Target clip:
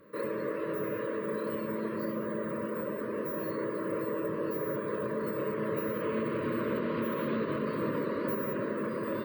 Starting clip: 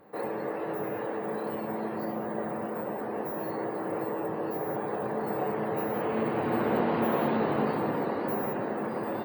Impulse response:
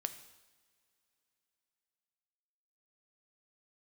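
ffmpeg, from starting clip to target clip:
-af "alimiter=limit=-22dB:level=0:latency=1:release=102,asuperstop=centerf=780:order=12:qfactor=2.4"

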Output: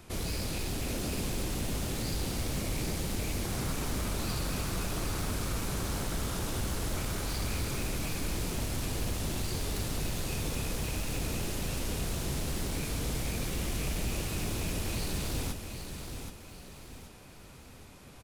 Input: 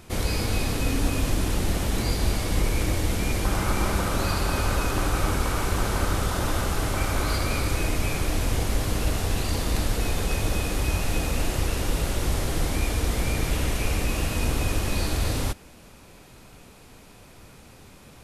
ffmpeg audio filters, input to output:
ffmpeg -i in.wav -filter_complex "[0:a]acrossover=split=360|3000[link_01][link_02][link_03];[link_02]acompressor=threshold=-42dB:ratio=2[link_04];[link_01][link_04][link_03]amix=inputs=3:normalize=0,aeval=exprs='0.0631*(abs(mod(val(0)/0.0631+3,4)-2)-1)':channel_layout=same,aecho=1:1:777|1554|2331|3108:0.422|0.16|0.0609|0.0231,volume=-4.5dB" out.wav

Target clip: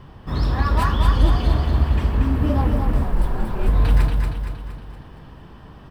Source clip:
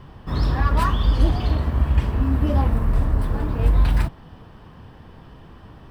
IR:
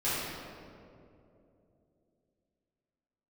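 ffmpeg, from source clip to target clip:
-filter_complex "[0:a]aecho=1:1:233|466|699|932|1165|1398:0.596|0.298|0.149|0.0745|0.0372|0.0186,asettb=1/sr,asplit=3[link_01][link_02][link_03];[link_01]atrim=end=3.044[link_04];[link_02]atrim=start=3.04:end=3.68,asetpts=PTS-STARTPTS,afade=type=in:duration=0.004:curve=qsin,afade=type=out:start_time=0.636:duration=0.004:curve=qsin,afreqshift=-83[link_05];[link_03]atrim=start=3.676[link_06];[link_04][link_05]acrossfade=duration=0.004:curve1=hsin:curve2=qsin[link_07];[link_07][link_06]acrossfade=duration=0.004:curve1=qsin:curve2=hsin"

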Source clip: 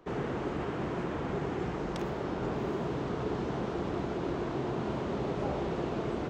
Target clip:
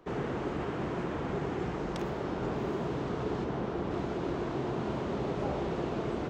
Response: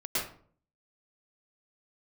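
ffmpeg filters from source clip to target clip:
-filter_complex "[0:a]asettb=1/sr,asplit=3[link_01][link_02][link_03];[link_01]atrim=end=3.444[link_04];[link_02]atrim=start=3.44:end=3.91,asetpts=PTS-STARTPTS,afade=type=in:duration=0.004:curve=qsin,afade=type=out:start_time=0.466:duration=0.004:curve=qsin,highshelf=frequency=4100:gain=-7[link_05];[link_03]atrim=start=3.906[link_06];[link_04][link_05]acrossfade=duration=0.004:curve1=hsin:curve2=qsin[link_07];[link_07][link_06]acrossfade=duration=0.004:curve1=qsin:curve2=hsin"

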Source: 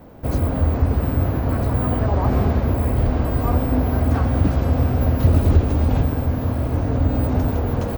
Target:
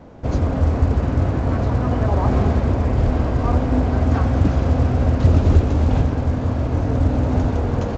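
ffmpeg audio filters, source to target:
ffmpeg -i in.wav -af "volume=1dB" -ar 16000 -c:a pcm_mulaw out.wav

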